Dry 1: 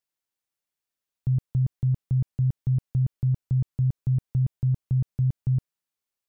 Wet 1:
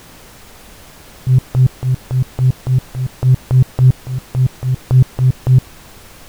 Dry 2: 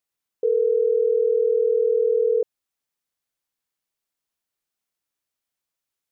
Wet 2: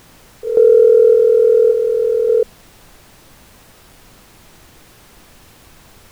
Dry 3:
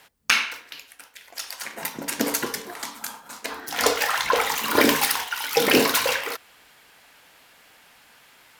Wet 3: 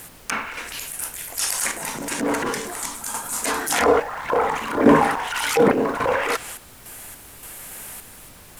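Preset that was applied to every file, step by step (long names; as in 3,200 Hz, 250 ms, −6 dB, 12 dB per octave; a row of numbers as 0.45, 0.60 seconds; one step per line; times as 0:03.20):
treble cut that deepens with the level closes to 980 Hz, closed at −19 dBFS
high shelf with overshoot 6,400 Hz +13.5 dB, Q 1.5
transient designer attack −9 dB, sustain +6 dB
sample-and-hold tremolo, depth 80%
background noise pink −57 dBFS
normalise the peak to −2 dBFS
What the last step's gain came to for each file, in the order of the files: +17.5, +12.0, +10.5 decibels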